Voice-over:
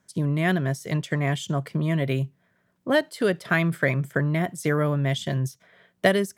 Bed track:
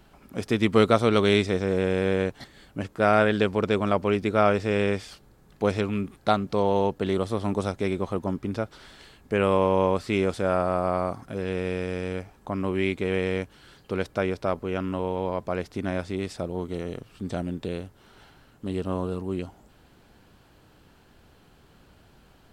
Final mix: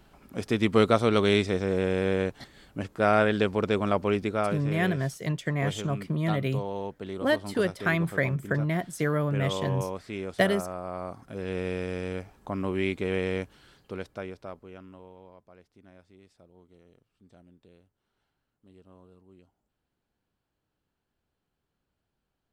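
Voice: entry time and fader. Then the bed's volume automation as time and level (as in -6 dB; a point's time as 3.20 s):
4.35 s, -3.5 dB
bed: 4.21 s -2 dB
4.59 s -11 dB
10.87 s -11 dB
11.58 s -2.5 dB
13.45 s -2.5 dB
15.52 s -26 dB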